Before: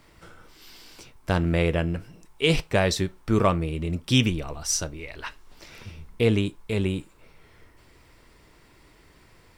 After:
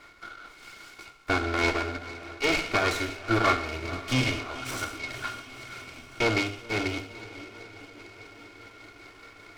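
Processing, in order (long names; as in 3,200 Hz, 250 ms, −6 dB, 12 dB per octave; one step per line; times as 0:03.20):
lower of the sound and its delayed copy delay 2.8 ms
hollow resonant body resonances 1,400/2,200 Hz, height 16 dB, ringing for 30 ms
on a send: feedback delay with all-pass diffusion 519 ms, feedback 62%, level −16 dB
on the sum: shaped tremolo triangle 4.9 Hz, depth 45%
high-shelf EQ 6,900 Hz −10.5 dB
reversed playback
upward compression, threshold −42 dBFS
reversed playback
low-shelf EQ 250 Hz −9.5 dB
mains-hum notches 50/100/150/200/250 Hz
reverb whose tail is shaped and stops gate 240 ms falling, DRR 7 dB
de-essing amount 75%
short delay modulated by noise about 2,000 Hz, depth 0.031 ms
level +1.5 dB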